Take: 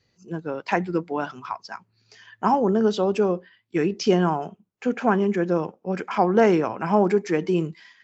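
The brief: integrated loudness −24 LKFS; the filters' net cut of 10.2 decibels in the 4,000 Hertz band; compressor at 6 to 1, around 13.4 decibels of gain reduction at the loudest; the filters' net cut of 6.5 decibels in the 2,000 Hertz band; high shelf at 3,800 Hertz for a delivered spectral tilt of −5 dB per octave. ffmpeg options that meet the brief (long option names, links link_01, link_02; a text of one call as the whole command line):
ffmpeg -i in.wav -af "equalizer=frequency=2000:width_type=o:gain=-5.5,highshelf=frequency=3800:gain=-8,equalizer=frequency=4000:width_type=o:gain=-7,acompressor=threshold=-28dB:ratio=6,volume=9.5dB" out.wav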